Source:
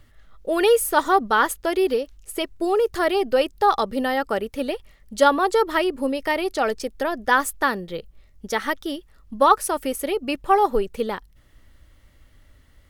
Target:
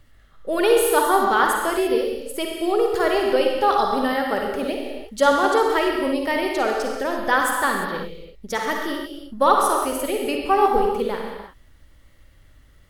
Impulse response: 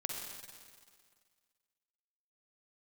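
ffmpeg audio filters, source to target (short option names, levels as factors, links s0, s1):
-filter_complex "[1:a]atrim=start_sample=2205,afade=t=out:st=0.4:d=0.01,atrim=end_sample=18081[s0];[0:a][s0]afir=irnorm=-1:irlink=0"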